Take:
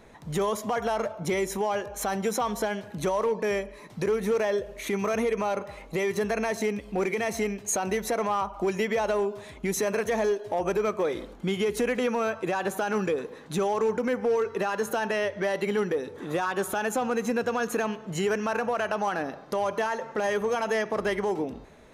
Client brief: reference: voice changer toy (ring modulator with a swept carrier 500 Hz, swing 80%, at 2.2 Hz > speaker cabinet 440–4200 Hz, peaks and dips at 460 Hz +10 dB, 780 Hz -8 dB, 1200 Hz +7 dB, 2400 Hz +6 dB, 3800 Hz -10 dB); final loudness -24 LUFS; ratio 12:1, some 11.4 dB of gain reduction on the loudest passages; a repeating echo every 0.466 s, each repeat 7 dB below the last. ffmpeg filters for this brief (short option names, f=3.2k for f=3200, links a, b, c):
-af "acompressor=threshold=-34dB:ratio=12,aecho=1:1:466|932|1398|1864|2330:0.447|0.201|0.0905|0.0407|0.0183,aeval=exprs='val(0)*sin(2*PI*500*n/s+500*0.8/2.2*sin(2*PI*2.2*n/s))':c=same,highpass=440,equalizer=f=460:t=q:w=4:g=10,equalizer=f=780:t=q:w=4:g=-8,equalizer=f=1.2k:t=q:w=4:g=7,equalizer=f=2.4k:t=q:w=4:g=6,equalizer=f=3.8k:t=q:w=4:g=-10,lowpass=f=4.2k:w=0.5412,lowpass=f=4.2k:w=1.3066,volume=15dB"